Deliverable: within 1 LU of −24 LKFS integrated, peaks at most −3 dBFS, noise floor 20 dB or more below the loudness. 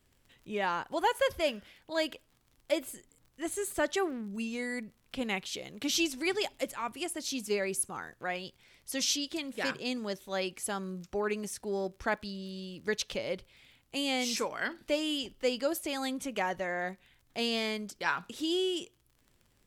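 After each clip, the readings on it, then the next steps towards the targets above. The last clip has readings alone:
crackle rate 40 per second; integrated loudness −33.5 LKFS; sample peak −15.5 dBFS; target loudness −24.0 LKFS
→ click removal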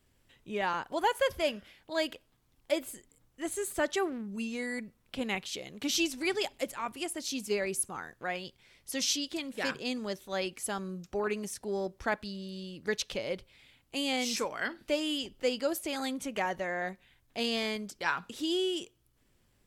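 crackle rate 0.15 per second; integrated loudness −33.5 LKFS; sample peak −15.5 dBFS; target loudness −24.0 LKFS
→ level +9.5 dB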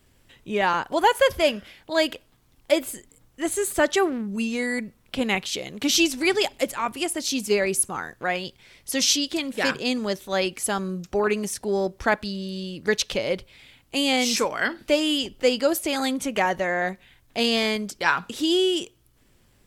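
integrated loudness −24.0 LKFS; sample peak −6.0 dBFS; background noise floor −61 dBFS

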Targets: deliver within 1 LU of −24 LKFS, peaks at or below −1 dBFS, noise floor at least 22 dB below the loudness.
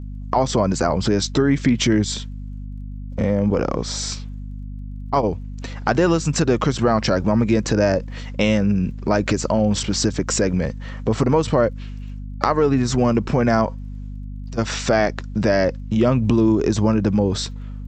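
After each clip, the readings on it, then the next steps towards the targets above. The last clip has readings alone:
crackle rate 18 per second; mains hum 50 Hz; hum harmonics up to 250 Hz; level of the hum −28 dBFS; integrated loudness −20.0 LKFS; sample peak −1.5 dBFS; target loudness −24.0 LKFS
→ click removal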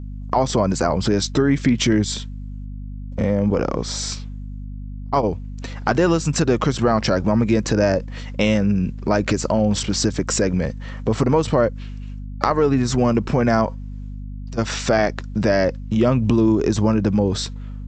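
crackle rate 0 per second; mains hum 50 Hz; hum harmonics up to 250 Hz; level of the hum −28 dBFS
→ mains-hum notches 50/100/150/200/250 Hz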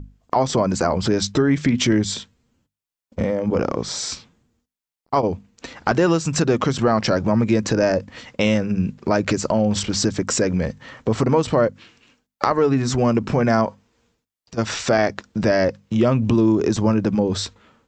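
mains hum none found; integrated loudness −20.5 LKFS; sample peak −1.5 dBFS; target loudness −24.0 LKFS
→ level −3.5 dB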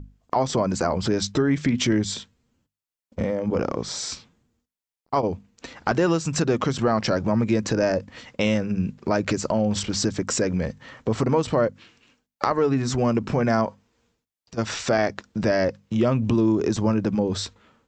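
integrated loudness −24.0 LKFS; sample peak −5.0 dBFS; background noise floor −91 dBFS

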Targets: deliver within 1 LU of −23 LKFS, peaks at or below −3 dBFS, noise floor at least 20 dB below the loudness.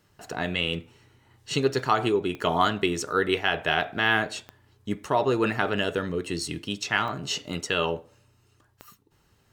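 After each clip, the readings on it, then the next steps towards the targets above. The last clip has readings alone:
number of clicks 4; integrated loudness −26.5 LKFS; sample peak −7.5 dBFS; target loudness −23.0 LKFS
→ click removal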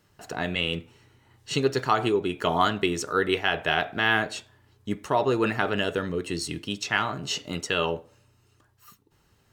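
number of clicks 0; integrated loudness −26.5 LKFS; sample peak −7.5 dBFS; target loudness −23.0 LKFS
→ level +3.5 dB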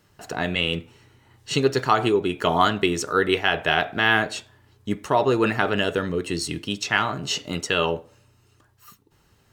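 integrated loudness −23.0 LKFS; sample peak −4.0 dBFS; background noise floor −61 dBFS

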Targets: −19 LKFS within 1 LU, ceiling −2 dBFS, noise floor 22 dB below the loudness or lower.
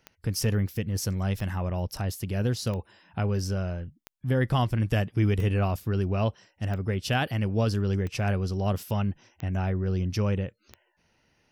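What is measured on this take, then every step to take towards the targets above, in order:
number of clicks 9; integrated loudness −28.5 LKFS; sample peak −15.5 dBFS; target loudness −19.0 LKFS
→ click removal
level +9.5 dB

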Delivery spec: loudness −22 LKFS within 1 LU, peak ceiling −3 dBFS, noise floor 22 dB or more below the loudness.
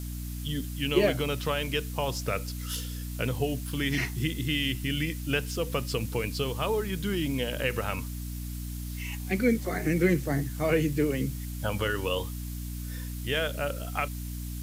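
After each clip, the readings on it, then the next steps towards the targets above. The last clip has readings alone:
mains hum 60 Hz; hum harmonics up to 300 Hz; level of the hum −33 dBFS; background noise floor −36 dBFS; target noise floor −52 dBFS; integrated loudness −30.0 LKFS; sample peak −10.5 dBFS; target loudness −22.0 LKFS
→ mains-hum notches 60/120/180/240/300 Hz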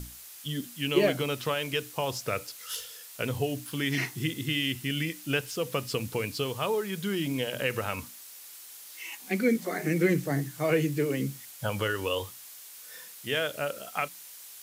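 mains hum none found; background noise floor −47 dBFS; target noise floor −53 dBFS
→ noise reduction from a noise print 6 dB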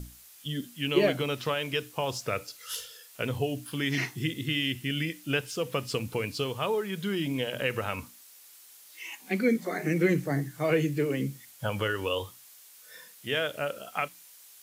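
background noise floor −53 dBFS; integrated loudness −30.5 LKFS; sample peak −9.5 dBFS; target loudness −22.0 LKFS
→ level +8.5 dB
brickwall limiter −3 dBFS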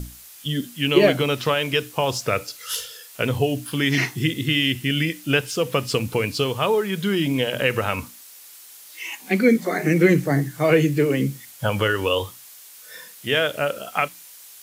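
integrated loudness −22.0 LKFS; sample peak −3.0 dBFS; background noise floor −45 dBFS

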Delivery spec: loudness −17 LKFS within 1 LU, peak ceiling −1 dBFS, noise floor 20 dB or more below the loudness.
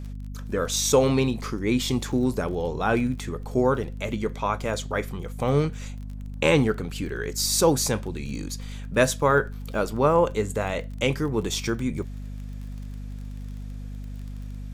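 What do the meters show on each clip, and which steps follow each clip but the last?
crackle rate 26 per second; mains hum 50 Hz; hum harmonics up to 250 Hz; level of the hum −32 dBFS; integrated loudness −25.0 LKFS; sample peak −7.0 dBFS; target loudness −17.0 LKFS
→ click removal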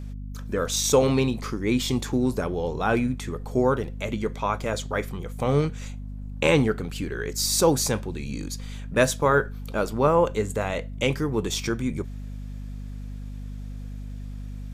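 crackle rate 0 per second; mains hum 50 Hz; hum harmonics up to 250 Hz; level of the hum −32 dBFS
→ hum removal 50 Hz, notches 5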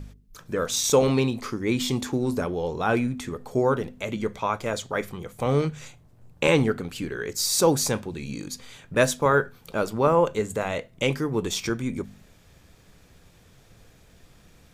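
mains hum none found; integrated loudness −25.5 LKFS; sample peak −7.0 dBFS; target loudness −17.0 LKFS
→ level +8.5 dB
brickwall limiter −1 dBFS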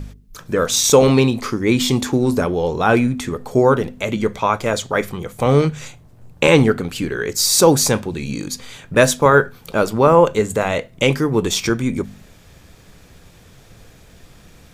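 integrated loudness −17.0 LKFS; sample peak −1.0 dBFS; background noise floor −47 dBFS

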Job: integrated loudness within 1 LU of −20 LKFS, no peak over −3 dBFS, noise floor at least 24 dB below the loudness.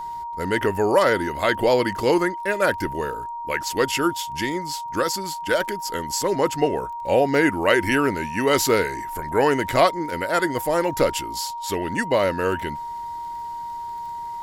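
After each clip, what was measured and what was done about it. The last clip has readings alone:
crackle rate 18 per second; interfering tone 940 Hz; level of the tone −29 dBFS; integrated loudness −22.5 LKFS; sample peak −5.0 dBFS; target loudness −20.0 LKFS
→ click removal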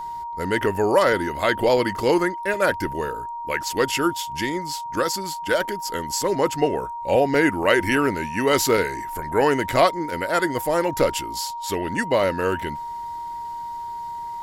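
crackle rate 0.55 per second; interfering tone 940 Hz; level of the tone −29 dBFS
→ notch filter 940 Hz, Q 30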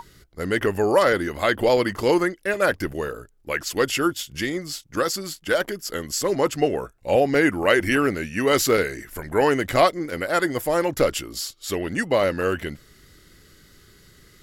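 interfering tone none found; integrated loudness −22.5 LKFS; sample peak −4.5 dBFS; target loudness −20.0 LKFS
→ level +2.5 dB
brickwall limiter −3 dBFS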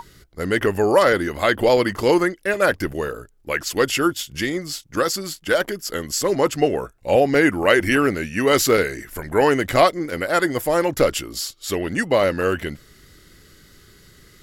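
integrated loudness −20.0 LKFS; sample peak −3.0 dBFS; background noise floor −52 dBFS

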